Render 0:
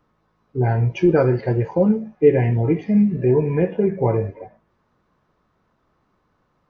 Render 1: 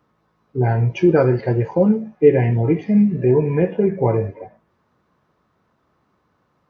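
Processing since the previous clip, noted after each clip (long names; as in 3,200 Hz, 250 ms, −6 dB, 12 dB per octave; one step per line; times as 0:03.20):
high-pass filter 67 Hz
level +1.5 dB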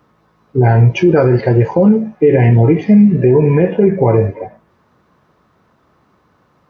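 boost into a limiter +10.5 dB
level −1 dB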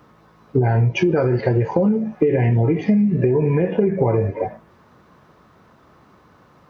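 downward compressor 10 to 1, threshold −18 dBFS, peak gain reduction 13.5 dB
level +4 dB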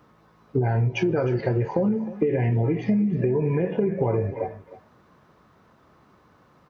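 single-tap delay 310 ms −16.5 dB
level −5.5 dB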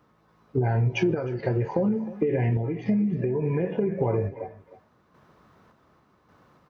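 sample-and-hold tremolo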